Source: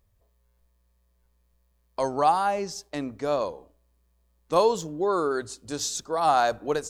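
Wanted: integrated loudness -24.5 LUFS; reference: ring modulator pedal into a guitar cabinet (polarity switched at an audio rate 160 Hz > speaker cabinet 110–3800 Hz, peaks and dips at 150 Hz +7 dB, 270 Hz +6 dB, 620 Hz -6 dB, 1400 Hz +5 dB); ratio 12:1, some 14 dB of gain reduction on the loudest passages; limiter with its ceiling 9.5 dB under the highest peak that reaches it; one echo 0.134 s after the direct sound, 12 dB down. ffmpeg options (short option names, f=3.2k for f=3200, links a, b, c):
-af "acompressor=threshold=-30dB:ratio=12,alimiter=level_in=4dB:limit=-24dB:level=0:latency=1,volume=-4dB,aecho=1:1:134:0.251,aeval=exprs='val(0)*sgn(sin(2*PI*160*n/s))':c=same,highpass=110,equalizer=f=150:t=q:w=4:g=7,equalizer=f=270:t=q:w=4:g=6,equalizer=f=620:t=q:w=4:g=-6,equalizer=f=1.4k:t=q:w=4:g=5,lowpass=f=3.8k:w=0.5412,lowpass=f=3.8k:w=1.3066,volume=13dB"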